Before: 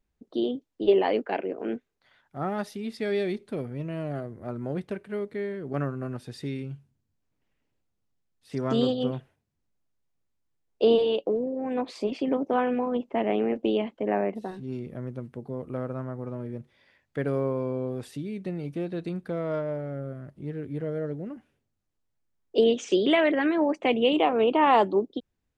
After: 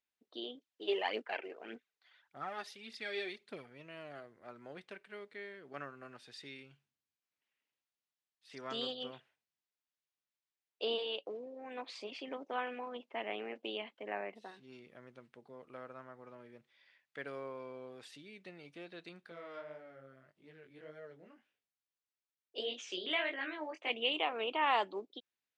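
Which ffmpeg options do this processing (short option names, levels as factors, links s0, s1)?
-filter_complex "[0:a]asplit=3[s0][s1][s2];[s0]afade=t=out:st=0.56:d=0.02[s3];[s1]aphaser=in_gain=1:out_gain=1:delay=3:decay=0.5:speed=1.7:type=triangular,afade=t=in:st=0.56:d=0.02,afade=t=out:st=3.65:d=0.02[s4];[s2]afade=t=in:st=3.65:d=0.02[s5];[s3][s4][s5]amix=inputs=3:normalize=0,asettb=1/sr,asplit=3[s6][s7][s8];[s6]atrim=end=19.264[s9];[s7]atrim=start=19.26:end=23.9,asetpts=PTS-STARTPTS,afade=t=in:d=0.004:c=qsin,afade=t=out:st=4.636:d=0.004:c=qsin,flanger=delay=17.5:depth=5.7:speed=1.7[s10];[s8]atrim=start=23.896[s11];[s9][s10]acrossfade=d=0.004:c1=hsin:c2=qsin[s12];[s12][s11]acrossfade=d=0.004:c1=qsin:c2=hsin,lowpass=3200,aderivative,volume=2.24"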